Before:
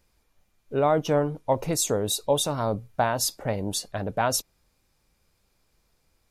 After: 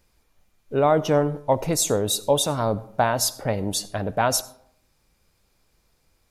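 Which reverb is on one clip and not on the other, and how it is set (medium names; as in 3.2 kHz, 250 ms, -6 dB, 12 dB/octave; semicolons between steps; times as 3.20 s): algorithmic reverb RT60 0.66 s, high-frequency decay 0.55×, pre-delay 40 ms, DRR 18 dB; trim +3 dB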